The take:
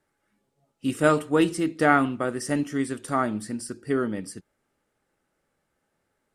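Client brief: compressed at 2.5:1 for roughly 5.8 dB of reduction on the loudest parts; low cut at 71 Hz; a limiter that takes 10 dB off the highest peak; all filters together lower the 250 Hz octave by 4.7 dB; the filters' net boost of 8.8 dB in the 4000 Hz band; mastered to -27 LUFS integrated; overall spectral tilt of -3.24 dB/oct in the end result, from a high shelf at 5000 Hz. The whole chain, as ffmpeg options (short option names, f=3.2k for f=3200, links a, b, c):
-af "highpass=71,equalizer=f=250:t=o:g=-6,equalizer=f=4k:t=o:g=9,highshelf=f=5k:g=7,acompressor=threshold=-22dB:ratio=2.5,volume=4.5dB,alimiter=limit=-14.5dB:level=0:latency=1"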